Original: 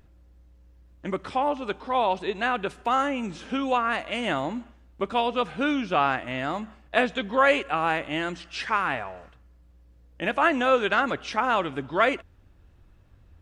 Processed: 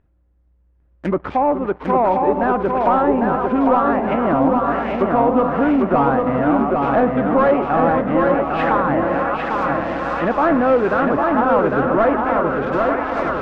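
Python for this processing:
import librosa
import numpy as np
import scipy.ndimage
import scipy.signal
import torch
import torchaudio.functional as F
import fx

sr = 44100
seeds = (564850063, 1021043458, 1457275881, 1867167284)

y = fx.reverse_delay_fb(x, sr, ms=452, feedback_pct=78, wet_db=-11.0)
y = scipy.signal.sosfilt(scipy.signal.butter(2, 1900.0, 'lowpass', fs=sr, output='sos'), y)
y = fx.leveller(y, sr, passes=3)
y = fx.env_lowpass_down(y, sr, base_hz=1100.0, full_db=-15.5)
y = fx.echo_feedback(y, sr, ms=802, feedback_pct=44, wet_db=-3.5)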